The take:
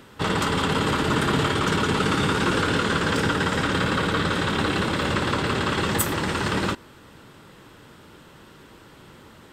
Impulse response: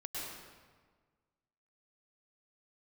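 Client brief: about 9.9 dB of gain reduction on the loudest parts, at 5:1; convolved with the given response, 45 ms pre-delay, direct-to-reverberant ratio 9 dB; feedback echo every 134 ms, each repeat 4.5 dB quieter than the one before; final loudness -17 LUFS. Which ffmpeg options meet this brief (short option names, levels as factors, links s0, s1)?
-filter_complex "[0:a]acompressor=threshold=0.0316:ratio=5,aecho=1:1:134|268|402|536|670|804|938|1072|1206:0.596|0.357|0.214|0.129|0.0772|0.0463|0.0278|0.0167|0.01,asplit=2[s0][s1];[1:a]atrim=start_sample=2205,adelay=45[s2];[s1][s2]afir=irnorm=-1:irlink=0,volume=0.316[s3];[s0][s3]amix=inputs=2:normalize=0,volume=4.47"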